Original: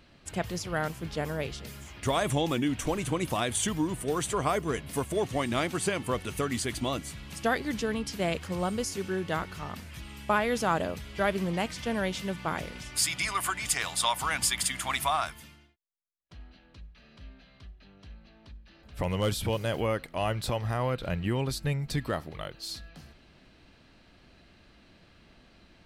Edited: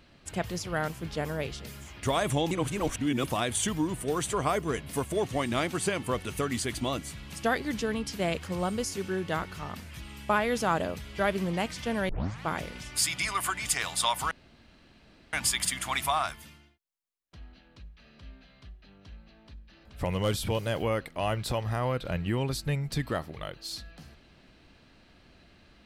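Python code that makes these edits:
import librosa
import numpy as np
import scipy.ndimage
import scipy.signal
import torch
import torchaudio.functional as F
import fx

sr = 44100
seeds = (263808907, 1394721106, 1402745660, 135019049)

y = fx.edit(x, sr, fx.reverse_span(start_s=2.51, length_s=0.73),
    fx.tape_start(start_s=12.09, length_s=0.36),
    fx.insert_room_tone(at_s=14.31, length_s=1.02), tone=tone)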